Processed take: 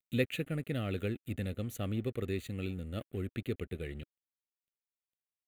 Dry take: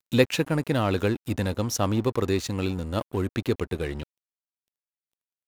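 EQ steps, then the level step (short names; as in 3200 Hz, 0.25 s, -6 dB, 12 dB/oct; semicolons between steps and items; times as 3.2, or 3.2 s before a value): bell 310 Hz -4 dB 0.28 oct; notch 1600 Hz, Q 11; fixed phaser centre 2300 Hz, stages 4; -8.5 dB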